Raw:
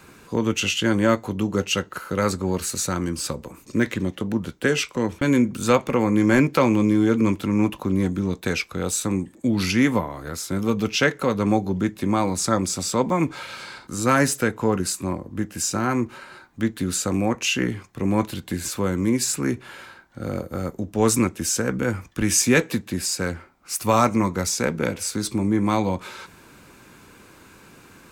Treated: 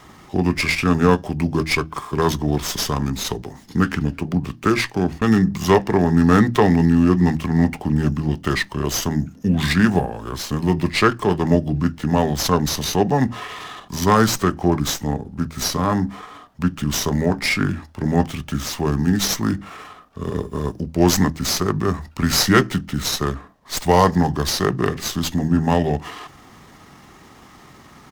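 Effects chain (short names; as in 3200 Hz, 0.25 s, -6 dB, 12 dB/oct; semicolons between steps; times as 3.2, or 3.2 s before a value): notches 50/100/150/200/250/300/350/400 Hz; pitch shift -4 st; running maximum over 3 samples; gain +4 dB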